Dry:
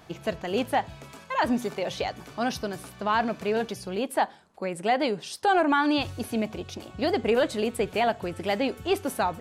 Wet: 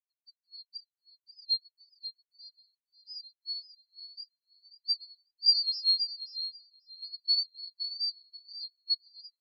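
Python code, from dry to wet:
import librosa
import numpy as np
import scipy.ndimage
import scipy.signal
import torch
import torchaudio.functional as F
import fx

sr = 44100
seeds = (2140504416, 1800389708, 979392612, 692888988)

y = fx.band_swap(x, sr, width_hz=4000)
y = fx.echo_feedback(y, sr, ms=537, feedback_pct=54, wet_db=-3)
y = fx.spectral_expand(y, sr, expansion=4.0)
y = y * 10.0 ** (-3.5 / 20.0)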